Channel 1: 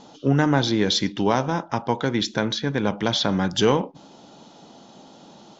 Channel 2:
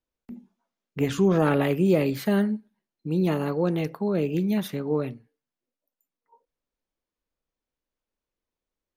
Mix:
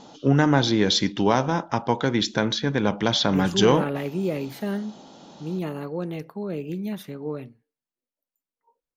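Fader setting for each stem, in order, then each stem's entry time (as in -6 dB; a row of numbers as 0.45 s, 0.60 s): +0.5 dB, -5.5 dB; 0.00 s, 2.35 s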